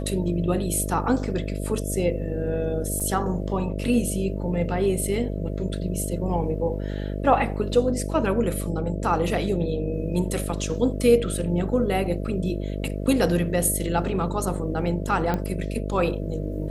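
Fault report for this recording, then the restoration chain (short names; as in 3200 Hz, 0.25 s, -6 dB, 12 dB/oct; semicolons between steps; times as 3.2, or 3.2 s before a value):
buzz 50 Hz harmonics 13 -29 dBFS
3–3.01 gap 5.4 ms
15.34 pop -13 dBFS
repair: de-click; de-hum 50 Hz, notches 13; interpolate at 3, 5.4 ms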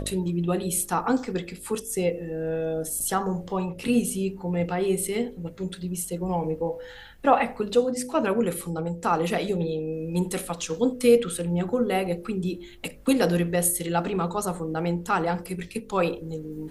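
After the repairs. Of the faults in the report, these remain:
none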